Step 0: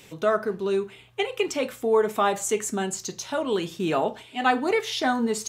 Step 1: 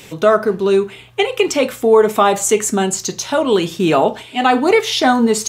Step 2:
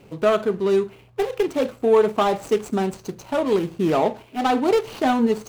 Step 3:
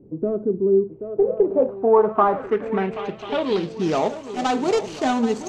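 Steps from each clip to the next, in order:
dynamic EQ 1700 Hz, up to -4 dB, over -43 dBFS, Q 4.2; maximiser +12 dB; gain -1 dB
median filter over 25 samples; gain -5 dB
swung echo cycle 1.041 s, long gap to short 3:1, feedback 41%, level -12.5 dB; low-pass sweep 330 Hz -> 6900 Hz, 0.86–4.08; gain -2 dB

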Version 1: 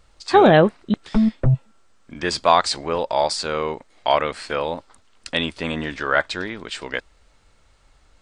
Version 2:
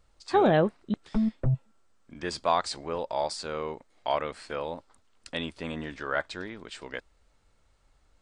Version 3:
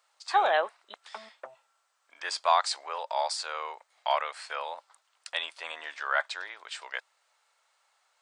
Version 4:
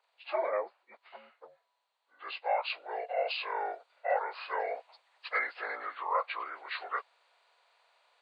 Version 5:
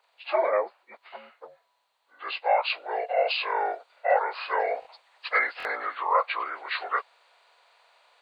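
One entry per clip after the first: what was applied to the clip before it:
bell 3000 Hz -3.5 dB 2.7 oct; gain -8.5 dB
HPF 720 Hz 24 dB/oct; gain +3.5 dB
inharmonic rescaling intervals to 81%; vocal rider within 5 dB 0.5 s; gain -1 dB
stuck buffer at 4.8/5.58, samples 1024, times 2; gain +7.5 dB

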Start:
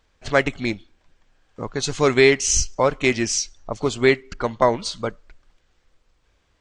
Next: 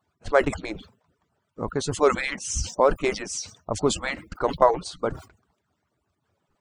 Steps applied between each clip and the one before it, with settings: median-filter separation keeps percussive; band shelf 3500 Hz -9 dB 2.3 oct; sustainer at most 150 dB/s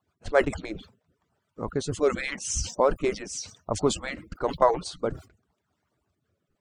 rotary speaker horn 7 Hz, later 0.9 Hz, at 0.23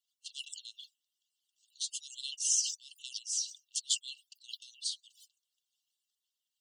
in parallel at -11 dB: soft clip -19 dBFS, distortion -10 dB; on the sum: brick-wall FIR high-pass 2700 Hz

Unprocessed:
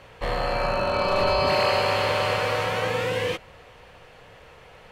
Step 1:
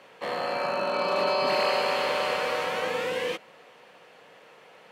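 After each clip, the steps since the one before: HPF 190 Hz 24 dB/oct; gain -3 dB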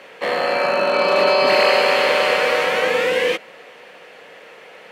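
graphic EQ 125/500/1000/2000 Hz -5/+3/-3/+5 dB; gain +8.5 dB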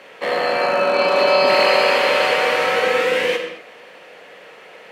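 reverb, pre-delay 10 ms, DRR 4.5 dB; gain -1 dB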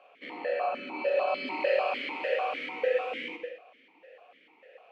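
vowel sequencer 6.7 Hz; gain -4 dB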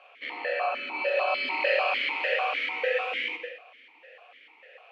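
band-pass 2600 Hz, Q 0.56; gain +8 dB

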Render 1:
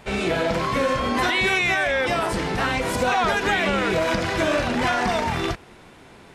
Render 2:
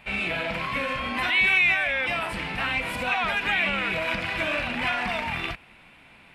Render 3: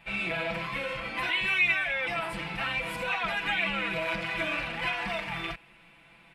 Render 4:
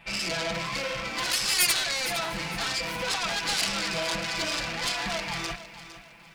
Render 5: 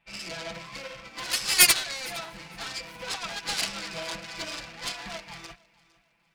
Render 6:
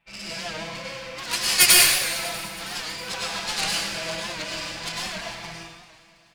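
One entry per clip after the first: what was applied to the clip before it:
fifteen-band EQ 100 Hz -4 dB, 400 Hz -10 dB, 2500 Hz +12 dB, 6300 Hz -10 dB; gain -6.5 dB
comb 6 ms, depth 92%; gain -7 dB
self-modulated delay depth 0.42 ms; in parallel at -7 dB: hard clip -26 dBFS, distortion -11 dB; on the sum: lo-fi delay 0.458 s, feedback 35%, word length 9-bit, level -13.5 dB
upward expander 2.5:1, over -37 dBFS; gain +7.5 dB
feedback echo 0.321 s, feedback 54%, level -18 dB; plate-style reverb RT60 0.99 s, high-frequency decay 0.95×, pre-delay 85 ms, DRR -3.5 dB; record warp 78 rpm, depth 100 cents

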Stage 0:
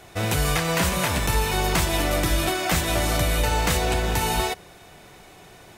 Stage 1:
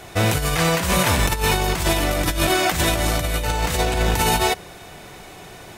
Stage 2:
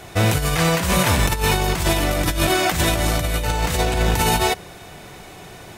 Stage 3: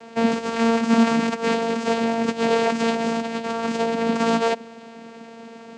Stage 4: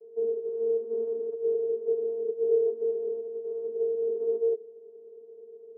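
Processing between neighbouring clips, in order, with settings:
negative-ratio compressor -24 dBFS, ratio -0.5; gain +5 dB
bell 120 Hz +2.5 dB 2 oct
vocoder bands 8, saw 229 Hz
Butterworth band-pass 420 Hz, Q 7.2; gain +4 dB

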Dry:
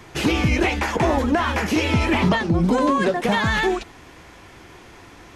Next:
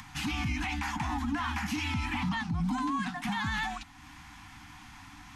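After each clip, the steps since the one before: Chebyshev band-stop 300–740 Hz, order 5; upward compressor, threshold -34 dBFS; limiter -15.5 dBFS, peak gain reduction 6 dB; gain -8 dB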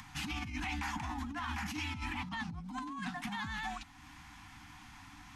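negative-ratio compressor -33 dBFS, ratio -0.5; gain -5.5 dB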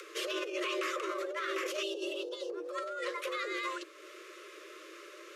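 octaver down 2 oct, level -6 dB; spectral gain 1.83–2.5, 720–2300 Hz -22 dB; frequency shift +310 Hz; gain +2.5 dB

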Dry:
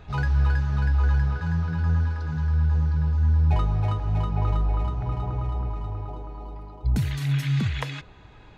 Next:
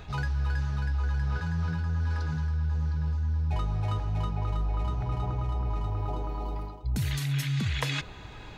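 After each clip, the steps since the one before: high shelf 3400 Hz +8.5 dB; reverse; compressor 6:1, threshold -31 dBFS, peak gain reduction 13.5 dB; reverse; gain +4.5 dB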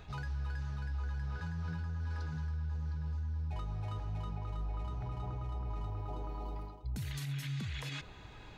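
limiter -24 dBFS, peak gain reduction 9 dB; gain -7.5 dB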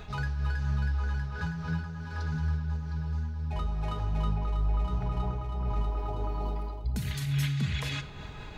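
reverb RT60 0.90 s, pre-delay 5 ms, DRR 6.5 dB; noise-modulated level, depth 55%; gain +9 dB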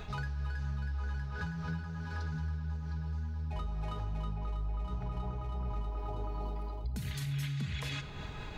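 compressor 3:1, threshold -35 dBFS, peak gain reduction 9 dB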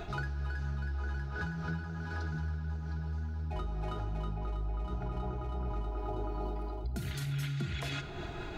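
small resonant body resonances 350/690/1400 Hz, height 18 dB, ringing for 0.1 s

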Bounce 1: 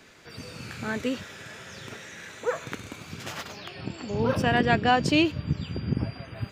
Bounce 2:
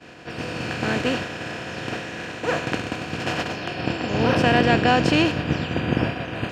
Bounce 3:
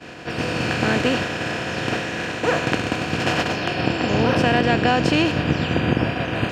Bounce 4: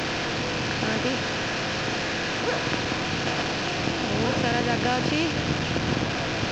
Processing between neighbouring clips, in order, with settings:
per-bin compression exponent 0.4; high shelf 11000 Hz -11.5 dB; expander -19 dBFS
compressor 3:1, threshold -22 dBFS, peak gain reduction 7.5 dB; gain +6 dB
delta modulation 32 kbps, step -15 dBFS; gain -6.5 dB

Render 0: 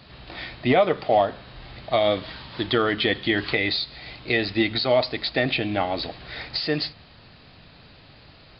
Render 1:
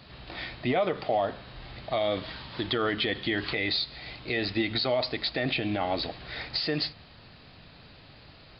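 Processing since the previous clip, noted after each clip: limiter -15.5 dBFS, peak gain reduction 7.5 dB; gain -2 dB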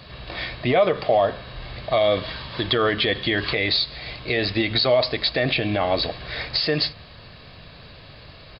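comb 1.8 ms, depth 33%; gain +7 dB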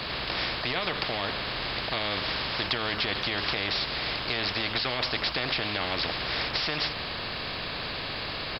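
spectral compressor 4:1; gain -3.5 dB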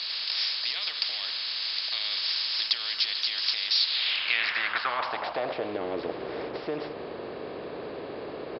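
band-pass sweep 5100 Hz -> 410 Hz, 3.72–5.78; gain +8.5 dB

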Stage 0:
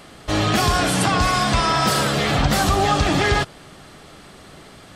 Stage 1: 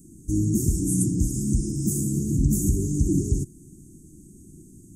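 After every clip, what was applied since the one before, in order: Chebyshev band-stop 350–6500 Hz, order 5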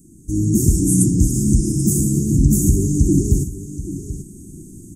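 echo 0.783 s -14 dB; AGC gain up to 8.5 dB; gain +1 dB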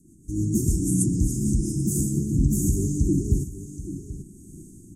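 rotary speaker horn 6.7 Hz, later 1.1 Hz, at 1.23; gain -5.5 dB

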